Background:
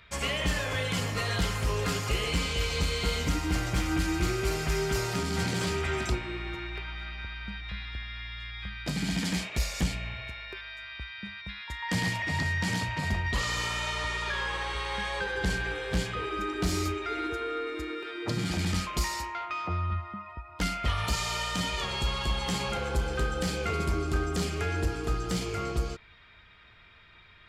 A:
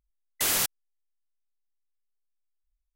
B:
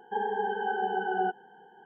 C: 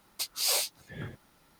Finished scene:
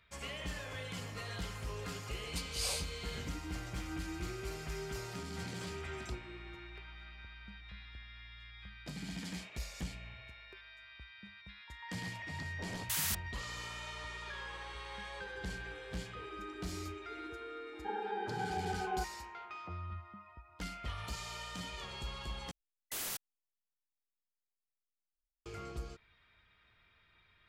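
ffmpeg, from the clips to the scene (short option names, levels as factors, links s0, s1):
-filter_complex "[1:a]asplit=2[s0][s1];[0:a]volume=0.224[s2];[3:a]lowpass=f=11000:w=0.5412,lowpass=f=11000:w=1.3066[s3];[s0]acrossover=split=880[s4][s5];[s5]adelay=310[s6];[s4][s6]amix=inputs=2:normalize=0[s7];[s2]asplit=2[s8][s9];[s8]atrim=end=22.514[s10];[s1]atrim=end=2.95,asetpts=PTS-STARTPTS,volume=0.188[s11];[s9]atrim=start=25.456[s12];[s3]atrim=end=1.59,asetpts=PTS-STARTPTS,volume=0.355,afade=t=in:d=0.004:c=hsin,afade=t=out:st=1.586:d=0.004:c=hsin,adelay=2160[s13];[s7]atrim=end=2.95,asetpts=PTS-STARTPTS,volume=0.335,afade=t=in:d=0.004:c=hsin,afade=t=out:st=2.946:d=0.004:c=hsin,adelay=12180[s14];[2:a]atrim=end=1.85,asetpts=PTS-STARTPTS,volume=0.355,afade=t=in:d=0.004:c=hsin,afade=t=out:st=1.846:d=0.004:c=hsin,adelay=17730[s15];[s10][s11]acrossfade=d=0.004:c1=hsin:c2=hsin[s16];[s16][s12]acrossfade=d=0.004:c1=hsin:c2=hsin[s17];[s17][s13][s14][s15]amix=inputs=4:normalize=0"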